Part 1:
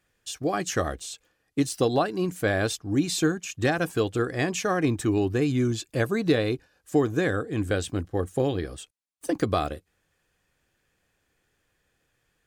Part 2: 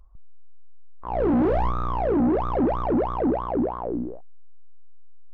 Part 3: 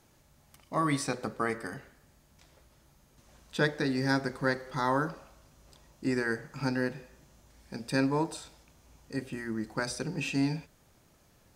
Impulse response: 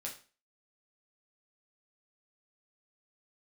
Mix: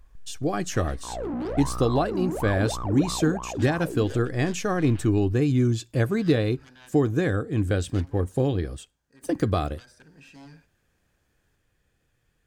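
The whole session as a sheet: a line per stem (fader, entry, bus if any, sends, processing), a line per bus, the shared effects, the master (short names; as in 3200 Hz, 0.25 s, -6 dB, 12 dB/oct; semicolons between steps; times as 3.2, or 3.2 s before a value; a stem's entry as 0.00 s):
-3.0 dB, 0.00 s, send -19.5 dB, low shelf 230 Hz +10 dB
-1.0 dB, 0.00 s, no send, limiter -25.5 dBFS, peak gain reduction 9.5 dB
-19.5 dB, 0.00 s, no send, bell 1600 Hz +13 dB 0.26 oct; added harmonics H 6 -14 dB, 7 -8 dB, 8 -13 dB, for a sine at -9.5 dBFS; auto duck -6 dB, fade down 1.90 s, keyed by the first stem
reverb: on, RT60 0.35 s, pre-delay 7 ms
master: dry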